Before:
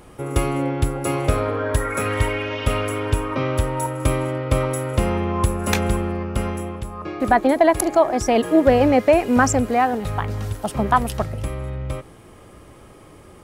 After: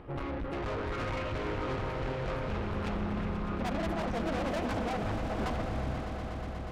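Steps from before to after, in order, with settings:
sub-octave generator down 2 octaves, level −4 dB
high-frequency loss of the air 360 metres
time stretch by phase vocoder 0.5×
tube saturation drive 33 dB, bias 0.35
echo that builds up and dies away 121 ms, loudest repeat 5, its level −12 dB
highs frequency-modulated by the lows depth 0.28 ms

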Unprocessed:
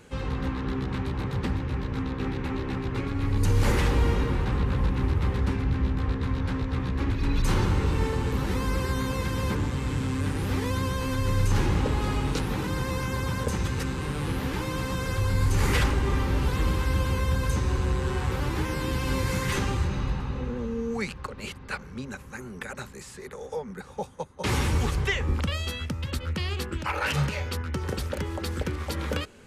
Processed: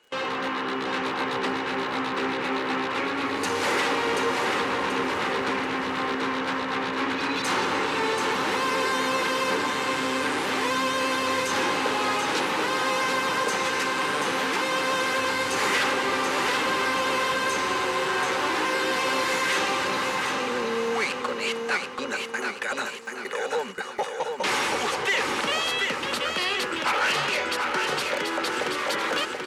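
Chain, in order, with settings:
mid-hump overdrive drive 21 dB, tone 4,500 Hz, clips at −13 dBFS
low-pass filter 12,000 Hz 12 dB per octave
steady tone 2,900 Hz −43 dBFS
high-pass filter 310 Hz 12 dB per octave
in parallel at −3 dB: brickwall limiter −25 dBFS, peak gain reduction 11.5 dB
on the sum: noise gate with hold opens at −18 dBFS
repeating echo 733 ms, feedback 43%, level −4.5 dB
surface crackle 72 per second −40 dBFS
level −4.5 dB

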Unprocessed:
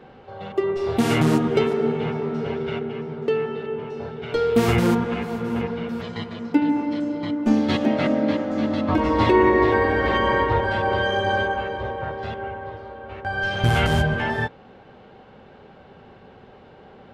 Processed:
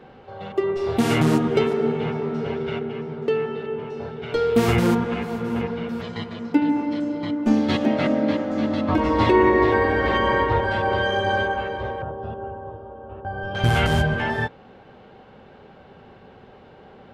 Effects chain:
0:12.02–0:13.55: moving average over 21 samples

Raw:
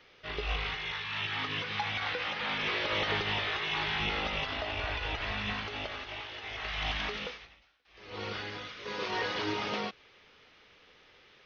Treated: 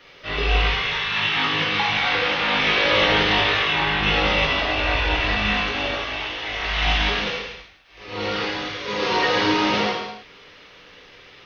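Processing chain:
0:03.62–0:04.02: low-pass filter 3,300 Hz → 2,200 Hz 6 dB per octave
reverb whose tail is shaped and stops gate 350 ms falling, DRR −4 dB
level +7.5 dB

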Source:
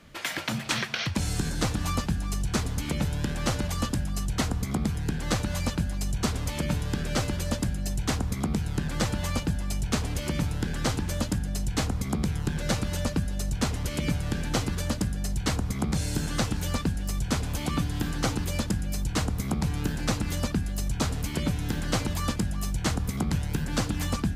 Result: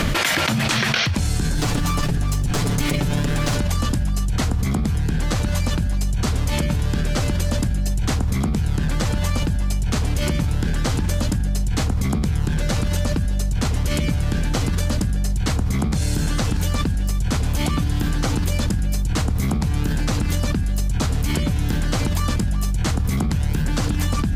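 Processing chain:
0:01.57–0:03.58: lower of the sound and its delayed copy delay 6.9 ms
low-shelf EQ 100 Hz +6.5 dB
envelope flattener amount 100%

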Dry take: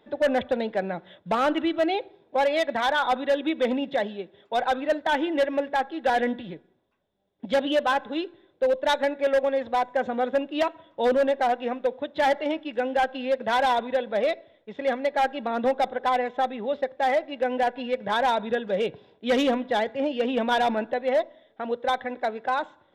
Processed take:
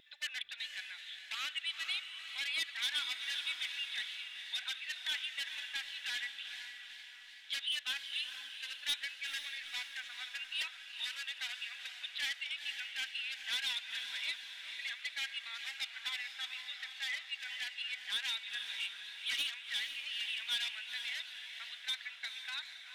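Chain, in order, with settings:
inverse Chebyshev high-pass filter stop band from 400 Hz, stop band 80 dB
in parallel at −1.5 dB: downward compressor, threshold −49 dBFS, peak gain reduction 20.5 dB
on the sum: soft clipping −28.5 dBFS, distortion −15 dB
pitch vibrato 1.2 Hz 11 cents
on a send: feedback delay with all-pass diffusion 481 ms, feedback 51%, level −8 dB
on the sum: feedback echo with a swinging delay time 381 ms, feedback 70%, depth 113 cents, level −17.5 dB

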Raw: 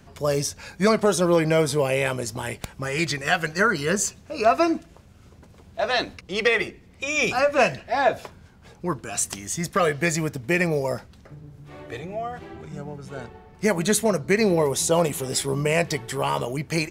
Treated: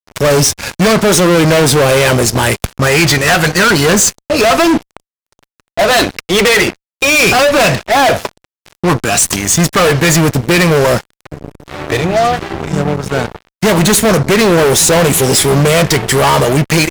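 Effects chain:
fuzz pedal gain 32 dB, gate −40 dBFS
level +6 dB

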